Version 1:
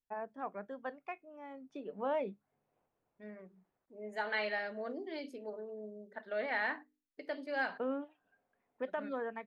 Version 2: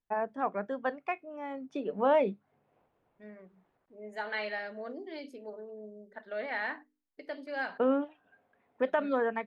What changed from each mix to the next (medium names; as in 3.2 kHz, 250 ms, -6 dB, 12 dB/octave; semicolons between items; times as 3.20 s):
first voice +9.5 dB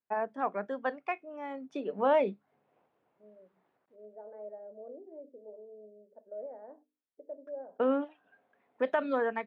second voice: add four-pole ladder low-pass 610 Hz, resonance 65%; master: add Bessel high-pass 190 Hz, order 2